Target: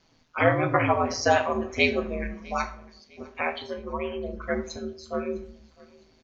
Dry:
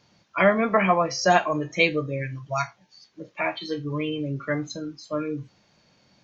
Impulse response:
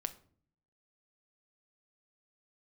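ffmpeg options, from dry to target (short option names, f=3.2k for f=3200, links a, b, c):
-filter_complex "[0:a]aeval=exprs='val(0)*sin(2*PI*81*n/s)':c=same,asettb=1/sr,asplit=3[a][b][c];[a]atrim=end=3.624[d];[b]atrim=start=3.62:end=4.42,asetpts=PTS-STARTPTS,afade=t=in:d=0.004:c=qsin,afade=t=out:st=0.796:d=0.004:c=qsin,equalizer=f=250:t=o:w=1:g=-8,equalizer=f=1k:t=o:w=1:g=10,equalizer=f=4k:t=o:w=1:g=-12[e];[c]atrim=start=4.416[f];[d][e]acrossfade=d=0.004:c1=hsin:c2=qsin[g];[g][f]acrossfade=d=0.004:c1=qsin:c2=hsin,aecho=1:1:655|1310|1965:0.0631|0.0252|0.0101[h];[1:a]atrim=start_sample=2205,afade=t=out:st=0.31:d=0.01,atrim=end_sample=14112,asetrate=33957,aresample=44100[i];[h][i]afir=irnorm=-1:irlink=0"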